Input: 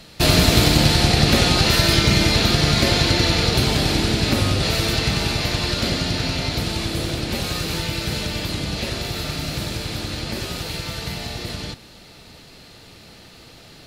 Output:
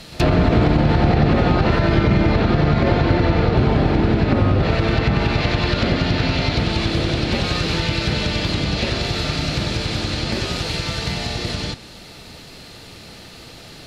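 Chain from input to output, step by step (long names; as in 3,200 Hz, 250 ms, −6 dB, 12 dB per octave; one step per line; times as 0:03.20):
treble cut that deepens with the level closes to 1,400 Hz, closed at −15.5 dBFS
brickwall limiter −11.5 dBFS, peak gain reduction 7.5 dB
backwards echo 76 ms −23 dB
level +5 dB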